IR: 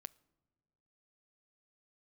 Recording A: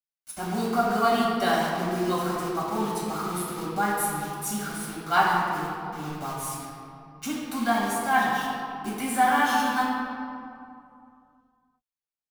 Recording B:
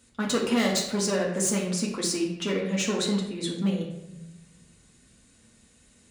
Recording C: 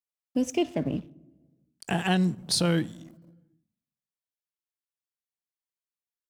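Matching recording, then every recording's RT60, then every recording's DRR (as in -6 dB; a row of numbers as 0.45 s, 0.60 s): C; 2.6 s, 0.95 s, no single decay rate; -6.5 dB, -3.5 dB, 18.0 dB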